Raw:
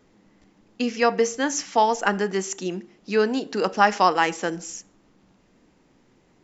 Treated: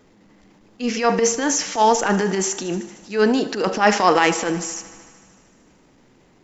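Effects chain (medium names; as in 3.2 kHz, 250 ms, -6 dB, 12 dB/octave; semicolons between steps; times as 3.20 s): transient shaper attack -12 dB, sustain +5 dB; thinning echo 76 ms, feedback 78%, high-pass 240 Hz, level -17 dB; trim +5.5 dB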